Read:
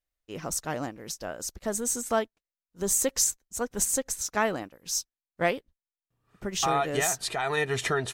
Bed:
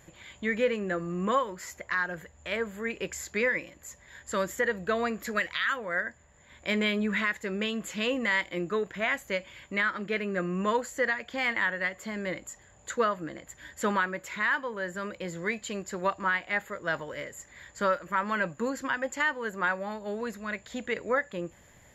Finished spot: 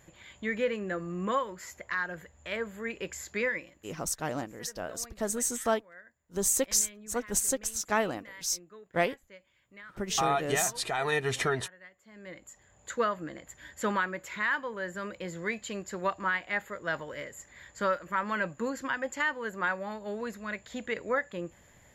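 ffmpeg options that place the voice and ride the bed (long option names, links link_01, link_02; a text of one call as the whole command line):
ffmpeg -i stem1.wav -i stem2.wav -filter_complex "[0:a]adelay=3550,volume=-1.5dB[link_01];[1:a]volume=16.5dB,afade=type=out:start_time=3.45:duration=0.61:silence=0.11885,afade=type=in:start_time=12.06:duration=0.95:silence=0.105925[link_02];[link_01][link_02]amix=inputs=2:normalize=0" out.wav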